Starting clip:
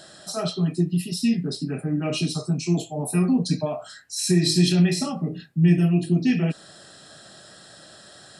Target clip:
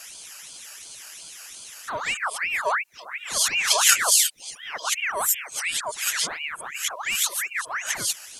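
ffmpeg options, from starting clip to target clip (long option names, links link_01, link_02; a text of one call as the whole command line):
ffmpeg -i in.wav -af "areverse,aexciter=amount=9:drive=1.3:freq=3600,aeval=exprs='val(0)*sin(2*PI*1700*n/s+1700*0.55/2.8*sin(2*PI*2.8*n/s))':channel_layout=same,volume=-5dB" out.wav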